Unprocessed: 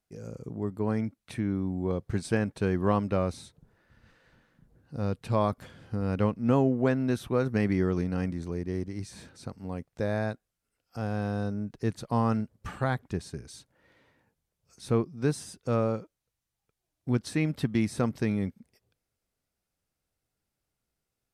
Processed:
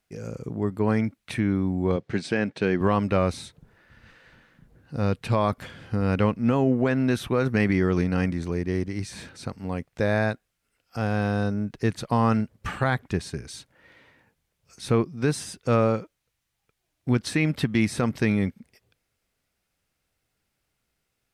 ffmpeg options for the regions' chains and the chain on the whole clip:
-filter_complex "[0:a]asettb=1/sr,asplit=3[a][b][c];[a]atrim=end=1.964[d];[b]atrim=start=1.96:end=2.81,asetpts=PTS-STARTPTS,afade=t=in:d=0.004:c=qsin,afade=t=out:st=0.846:d=0.004:c=qsin,highpass=170,lowpass=5.5k,equalizer=f=1.1k:w=1.8:g=-5[e];[c]atrim=start=2.806[f];[d][e]acrossfade=d=0.004:c1=hsin:c2=qsin[g];[g][f]acrossfade=d=0.004:c1=qsin:c2=hsin,equalizer=f=2.3k:w=0.82:g=6,alimiter=limit=-17.5dB:level=0:latency=1:release=53,volume=5.5dB"

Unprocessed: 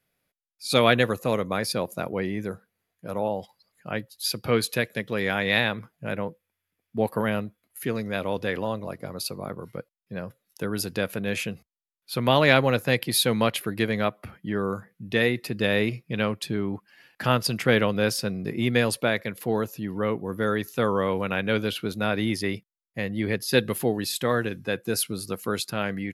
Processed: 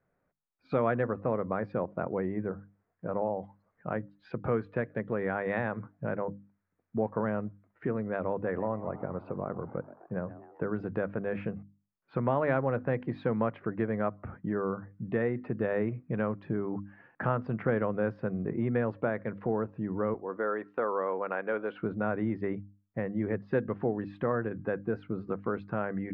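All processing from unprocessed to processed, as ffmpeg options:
-filter_complex "[0:a]asettb=1/sr,asplit=3[a][b][c];[a]atrim=end=8.334[d];[b]atrim=start=8.33:end=10.64,asetpts=PTS-STARTPTS,afade=t=in:d=0.004:c=qsin,afade=t=out:st=2.306:d=0.004:c=qsin,lowpass=2.8k,asplit=6[e][f][g][h][i][j];[f]adelay=128,afreqshift=100,volume=-18.5dB[k];[g]adelay=256,afreqshift=200,volume=-23.9dB[l];[h]adelay=384,afreqshift=300,volume=-29.2dB[m];[i]adelay=512,afreqshift=400,volume=-34.6dB[n];[j]adelay=640,afreqshift=500,volume=-39.9dB[o];[e][k][l][m][n][o]amix=inputs=6:normalize=0,atrim=end_sample=101871[p];[c]atrim=start=10.636[q];[d][p]acrossfade=d=0.004:c1=hsin:c2=qsin[r];[r][q]acrossfade=d=0.004:c1=qsin:c2=hsin,asettb=1/sr,asplit=3[s][t][u];[s]atrim=end=20.144[v];[t]atrim=start=20.14:end=21.82,asetpts=PTS-STARTPTS,afade=t=in:d=0.004:c=qsin,afade=t=out:st=1.676:d=0.004:c=qsin,agate=range=-33dB:threshold=-43dB:ratio=3:release=100:detection=peak,highpass=420[w];[u]atrim=start=21.816[x];[v][w]acrossfade=d=0.004:c1=hsin:c2=qsin[y];[y][x]acrossfade=d=0.004:c1=qsin:c2=hsin,lowpass=f=1.5k:w=0.5412,lowpass=f=1.5k:w=1.3066,bandreject=f=50:t=h:w=6,bandreject=f=100:t=h:w=6,bandreject=f=150:t=h:w=6,bandreject=f=200:t=h:w=6,bandreject=f=250:t=h:w=6,bandreject=f=300:t=h:w=6,acompressor=threshold=-36dB:ratio=2,volume=3.5dB"

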